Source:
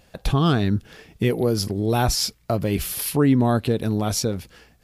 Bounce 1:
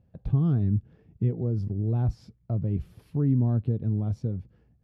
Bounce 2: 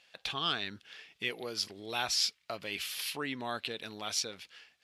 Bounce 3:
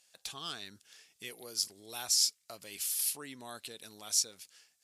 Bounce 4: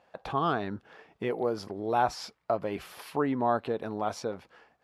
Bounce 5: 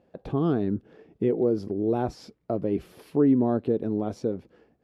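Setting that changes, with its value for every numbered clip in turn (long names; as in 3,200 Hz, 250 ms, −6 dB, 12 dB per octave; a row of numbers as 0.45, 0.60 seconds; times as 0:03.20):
resonant band-pass, frequency: 110, 3,000, 7,700, 910, 360 Hertz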